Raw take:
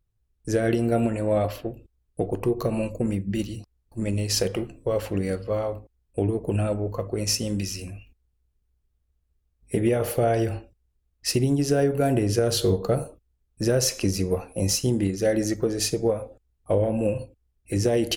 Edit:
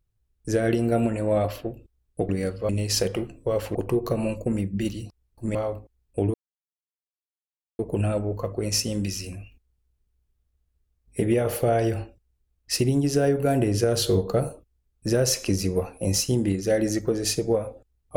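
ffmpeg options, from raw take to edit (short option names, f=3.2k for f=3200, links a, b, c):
-filter_complex "[0:a]asplit=6[a][b][c][d][e][f];[a]atrim=end=2.292[g];[b]atrim=start=5.148:end=5.552[h];[c]atrim=start=4.088:end=5.152[i];[d]atrim=start=2.288:end=4.092[j];[e]atrim=start=5.548:end=6.34,asetpts=PTS-STARTPTS,afade=t=out:st=0.788:d=0.004:c=hsin,apad=pad_dur=1.45[k];[f]atrim=start=6.34,asetpts=PTS-STARTPTS,afade=t=in:d=0.004:c=hsin[l];[g][h]acrossfade=d=0.004:c1=hsin:c2=hsin[m];[m][i]acrossfade=d=0.004:c1=hsin:c2=hsin[n];[n][j]acrossfade=d=0.004:c1=hsin:c2=hsin[o];[k][l]concat=n=2:v=0:a=1[p];[o][p]acrossfade=d=0.004:c1=hsin:c2=hsin"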